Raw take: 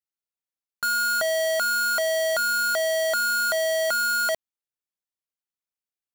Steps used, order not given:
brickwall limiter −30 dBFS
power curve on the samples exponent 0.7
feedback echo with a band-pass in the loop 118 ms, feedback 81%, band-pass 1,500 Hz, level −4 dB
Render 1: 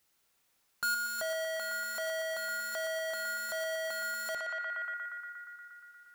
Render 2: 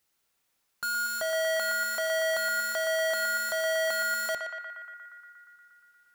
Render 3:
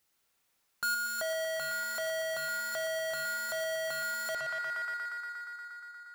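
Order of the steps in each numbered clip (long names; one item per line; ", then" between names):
power curve on the samples, then feedback echo with a band-pass in the loop, then brickwall limiter
brickwall limiter, then power curve on the samples, then feedback echo with a band-pass in the loop
feedback echo with a band-pass in the loop, then brickwall limiter, then power curve on the samples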